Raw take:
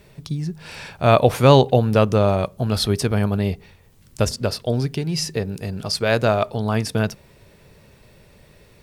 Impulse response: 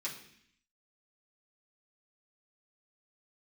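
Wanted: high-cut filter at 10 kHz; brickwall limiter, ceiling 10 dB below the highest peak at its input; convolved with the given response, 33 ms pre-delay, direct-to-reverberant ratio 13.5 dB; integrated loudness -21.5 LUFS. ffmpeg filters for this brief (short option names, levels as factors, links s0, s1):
-filter_complex "[0:a]lowpass=10000,alimiter=limit=0.282:level=0:latency=1,asplit=2[s0][s1];[1:a]atrim=start_sample=2205,adelay=33[s2];[s1][s2]afir=irnorm=-1:irlink=0,volume=0.188[s3];[s0][s3]amix=inputs=2:normalize=0,volume=1.19"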